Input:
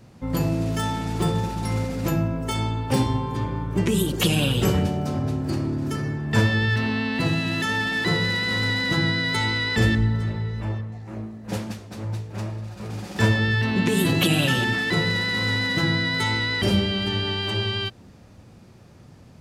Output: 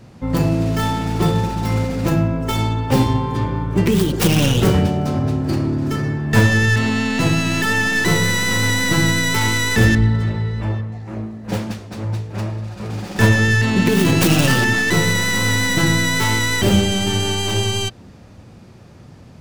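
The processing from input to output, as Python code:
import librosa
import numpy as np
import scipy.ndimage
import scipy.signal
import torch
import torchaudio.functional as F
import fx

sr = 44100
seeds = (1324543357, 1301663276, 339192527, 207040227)

y = fx.tracing_dist(x, sr, depth_ms=0.46)
y = fx.high_shelf(y, sr, hz=8200.0, db=-4.5)
y = F.gain(torch.from_numpy(y), 6.0).numpy()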